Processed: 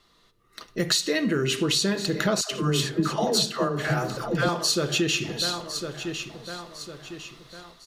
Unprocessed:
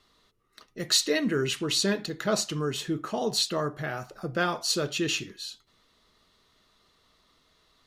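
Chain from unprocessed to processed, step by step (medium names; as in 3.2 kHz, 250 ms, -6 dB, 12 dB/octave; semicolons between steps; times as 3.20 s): level rider gain up to 10.5 dB; feedback delay 1054 ms, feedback 42%, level -17.5 dB; reverberation RT60 0.90 s, pre-delay 6 ms, DRR 11 dB; compression 6:1, threshold -24 dBFS, peak gain reduction 13 dB; 2.41–4.49 s: phase dispersion lows, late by 116 ms, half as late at 550 Hz; trim +2.5 dB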